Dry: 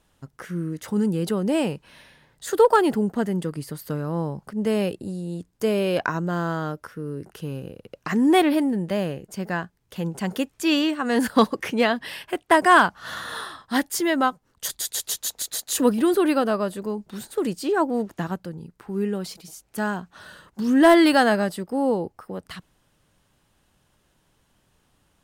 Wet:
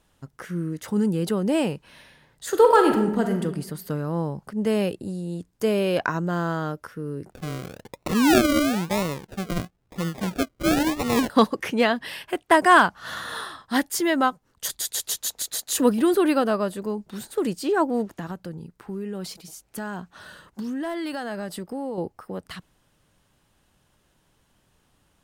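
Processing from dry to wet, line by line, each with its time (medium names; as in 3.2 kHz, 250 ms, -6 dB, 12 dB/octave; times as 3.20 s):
2.49–3.42 s: reverb throw, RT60 0.91 s, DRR 4 dB
7.30–11.30 s: decimation with a swept rate 39×, swing 60% 1 Hz
18.17–21.98 s: compression, threshold -28 dBFS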